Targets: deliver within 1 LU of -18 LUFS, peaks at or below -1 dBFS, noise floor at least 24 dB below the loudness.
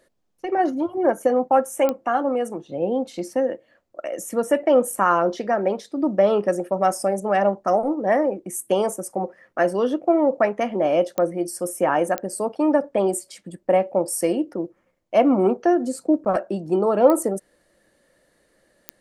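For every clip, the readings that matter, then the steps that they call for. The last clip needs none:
clicks 5; loudness -22.0 LUFS; peak -2.5 dBFS; loudness target -18.0 LUFS
-> de-click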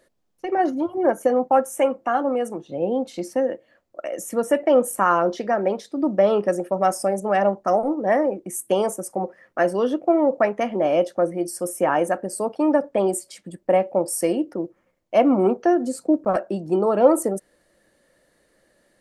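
clicks 0; loudness -22.0 LUFS; peak -2.5 dBFS; loudness target -18.0 LUFS
-> gain +4 dB; limiter -1 dBFS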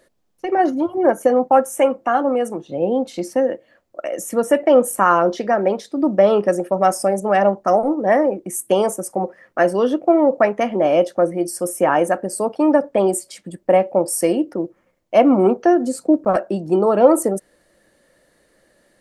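loudness -18.0 LUFS; peak -1.0 dBFS; noise floor -61 dBFS

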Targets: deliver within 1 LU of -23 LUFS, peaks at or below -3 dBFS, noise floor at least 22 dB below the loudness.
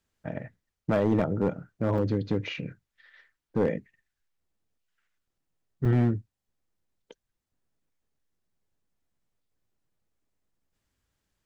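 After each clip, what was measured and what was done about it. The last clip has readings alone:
clipped 0.6%; flat tops at -17.5 dBFS; dropouts 2; longest dropout 5.2 ms; loudness -28.5 LUFS; peak -17.5 dBFS; loudness target -23.0 LUFS
-> clip repair -17.5 dBFS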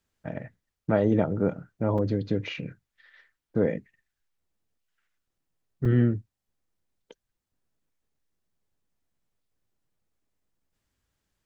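clipped 0.0%; dropouts 2; longest dropout 5.2 ms
-> interpolate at 1.98/5.85, 5.2 ms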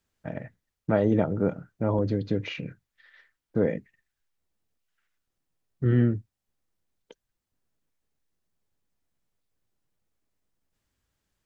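dropouts 0; loudness -27.5 LUFS; peak -10.0 dBFS; loudness target -23.0 LUFS
-> gain +4.5 dB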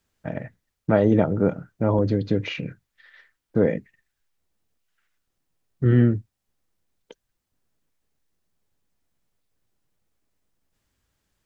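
loudness -23.0 LUFS; peak -5.5 dBFS; noise floor -80 dBFS

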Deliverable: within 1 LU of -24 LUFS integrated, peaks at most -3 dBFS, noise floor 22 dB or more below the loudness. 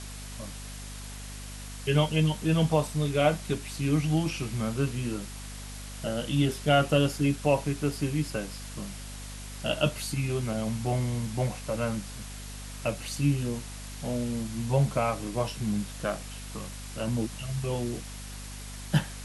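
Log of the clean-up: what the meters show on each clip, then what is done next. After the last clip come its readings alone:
hum 50 Hz; harmonics up to 250 Hz; hum level -39 dBFS; noise floor -41 dBFS; noise floor target -51 dBFS; loudness -29.0 LUFS; peak -10.5 dBFS; loudness target -24.0 LUFS
-> notches 50/100/150/200/250 Hz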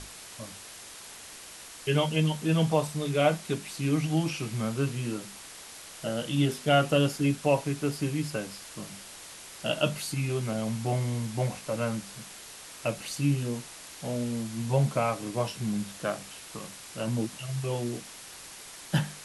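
hum none; noise floor -46 dBFS; noise floor target -52 dBFS
-> denoiser 6 dB, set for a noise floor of -46 dBFS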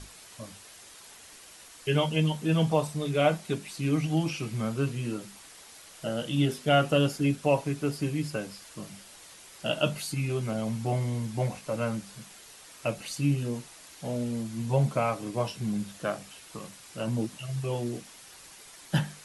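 noise floor -50 dBFS; noise floor target -52 dBFS
-> denoiser 6 dB, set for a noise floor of -50 dBFS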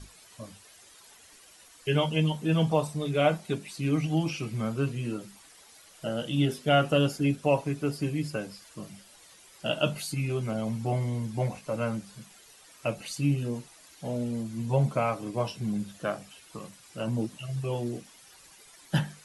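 noise floor -55 dBFS; loudness -29.5 LUFS; peak -10.5 dBFS; loudness target -24.0 LUFS
-> gain +5.5 dB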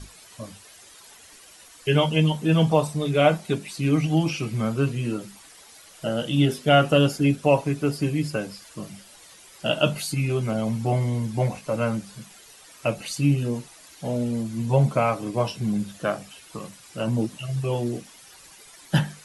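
loudness -24.0 LUFS; peak -5.0 dBFS; noise floor -49 dBFS

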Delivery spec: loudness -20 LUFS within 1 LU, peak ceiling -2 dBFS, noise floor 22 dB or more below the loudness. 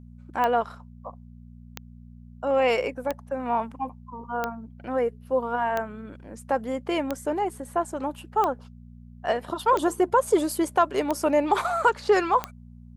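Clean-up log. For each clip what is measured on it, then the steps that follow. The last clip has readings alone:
clicks 10; hum 60 Hz; harmonics up to 240 Hz; hum level -44 dBFS; loudness -26.0 LUFS; peak -8.5 dBFS; loudness target -20.0 LUFS
-> de-click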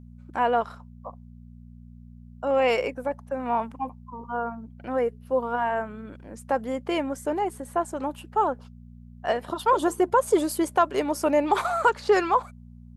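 clicks 0; hum 60 Hz; harmonics up to 240 Hz; hum level -44 dBFS
-> de-hum 60 Hz, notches 4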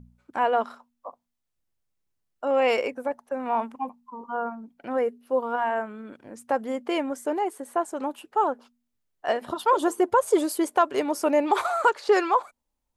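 hum none; loudness -26.0 LUFS; peak -9.0 dBFS; loudness target -20.0 LUFS
-> gain +6 dB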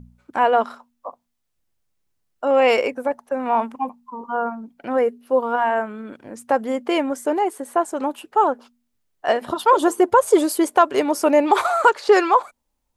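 loudness -20.0 LUFS; peak -3.0 dBFS; noise floor -74 dBFS

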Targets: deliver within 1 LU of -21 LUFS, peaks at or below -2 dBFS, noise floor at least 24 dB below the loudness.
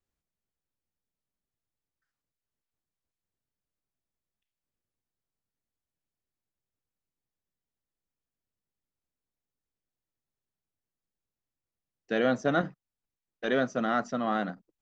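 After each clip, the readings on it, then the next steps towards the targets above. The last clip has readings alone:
loudness -29.5 LUFS; peak -13.5 dBFS; loudness target -21.0 LUFS
-> gain +8.5 dB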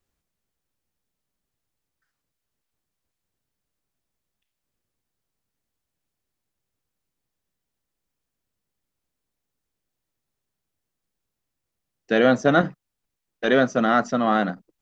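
loudness -21.0 LUFS; peak -5.0 dBFS; noise floor -83 dBFS

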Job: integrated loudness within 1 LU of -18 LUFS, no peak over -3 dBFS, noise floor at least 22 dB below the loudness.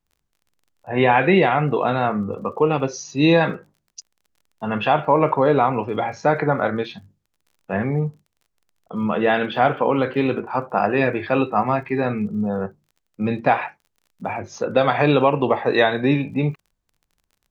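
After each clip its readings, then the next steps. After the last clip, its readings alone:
ticks 33/s; loudness -20.5 LUFS; peak -3.0 dBFS; loudness target -18.0 LUFS
-> de-click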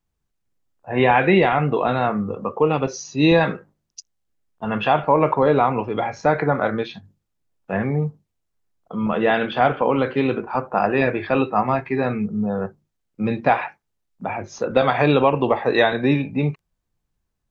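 ticks 0.11/s; loudness -20.5 LUFS; peak -3.0 dBFS; loudness target -18.0 LUFS
-> gain +2.5 dB; limiter -3 dBFS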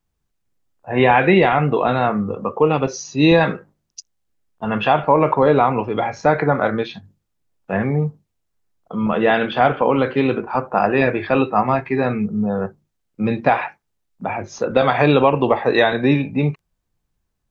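loudness -18.0 LUFS; peak -3.0 dBFS; noise floor -74 dBFS

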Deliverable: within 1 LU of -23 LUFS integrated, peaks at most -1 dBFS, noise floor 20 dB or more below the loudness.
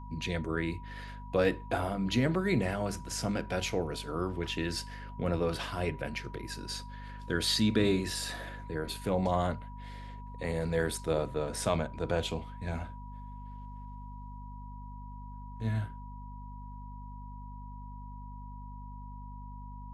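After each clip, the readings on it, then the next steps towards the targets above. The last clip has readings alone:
hum 50 Hz; harmonics up to 250 Hz; hum level -42 dBFS; steady tone 970 Hz; tone level -49 dBFS; loudness -33.0 LUFS; peak -13.5 dBFS; loudness target -23.0 LUFS
-> notches 50/100/150/200/250 Hz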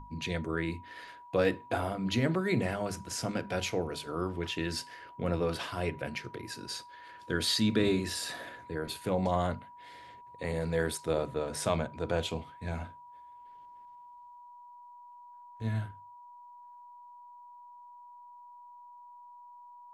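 hum none; steady tone 970 Hz; tone level -49 dBFS
-> notch 970 Hz, Q 30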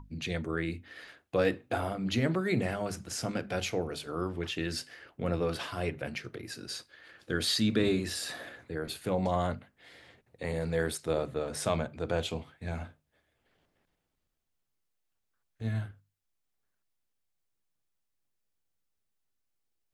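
steady tone none; loudness -33.0 LUFS; peak -14.0 dBFS; loudness target -23.0 LUFS
-> gain +10 dB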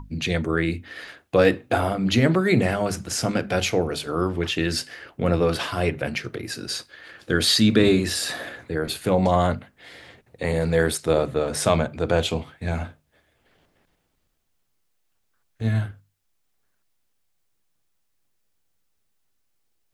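loudness -23.0 LUFS; peak -4.0 dBFS; noise floor -70 dBFS

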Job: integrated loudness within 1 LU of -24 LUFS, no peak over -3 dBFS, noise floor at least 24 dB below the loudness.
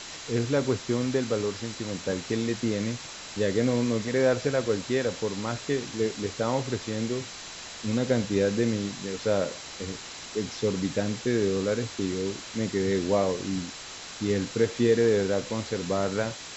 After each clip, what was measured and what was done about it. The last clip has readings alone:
steady tone 4000 Hz; tone level -50 dBFS; noise floor -41 dBFS; noise floor target -52 dBFS; loudness -28.0 LUFS; peak -10.5 dBFS; loudness target -24.0 LUFS
-> notch 4000 Hz, Q 30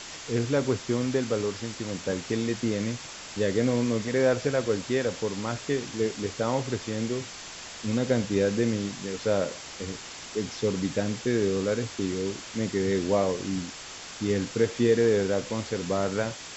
steady tone none; noise floor -42 dBFS; noise floor target -52 dBFS
-> denoiser 10 dB, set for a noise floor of -42 dBFS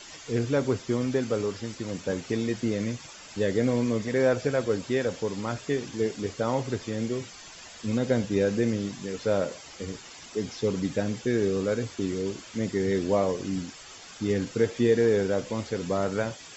noise floor -46 dBFS; noise floor target -52 dBFS
-> denoiser 6 dB, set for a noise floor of -46 dBFS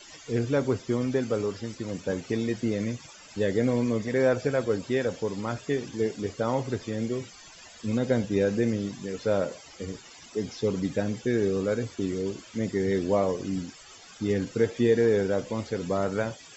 noise floor -49 dBFS; noise floor target -52 dBFS
-> denoiser 6 dB, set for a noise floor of -49 dBFS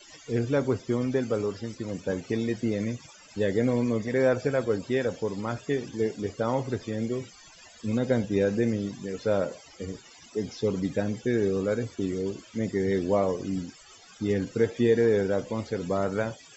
noise floor -52 dBFS; loudness -28.0 LUFS; peak -11.0 dBFS; loudness target -24.0 LUFS
-> gain +4 dB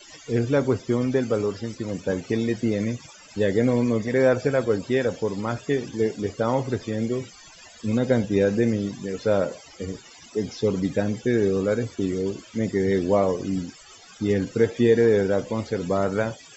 loudness -24.0 LUFS; peak -7.0 dBFS; noise floor -48 dBFS

